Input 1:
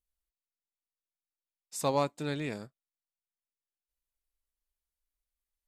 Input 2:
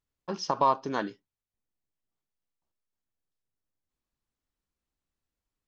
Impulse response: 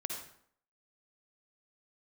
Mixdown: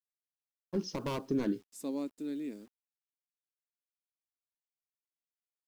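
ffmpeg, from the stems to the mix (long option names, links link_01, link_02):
-filter_complex "[0:a]lowshelf=frequency=180:width_type=q:width=3:gain=-14,volume=-6dB[link_01];[1:a]equalizer=frequency=370:width_type=o:width=2.1:gain=6,asoftclip=type=hard:threshold=-22dB,adelay=450,volume=0.5dB[link_02];[link_01][link_02]amix=inputs=2:normalize=0,firequalizer=gain_entry='entry(260,0);entry(770,-16);entry(2100,-11);entry(10000,-3)':delay=0.05:min_phase=1,acrusher=bits=10:mix=0:aa=0.000001"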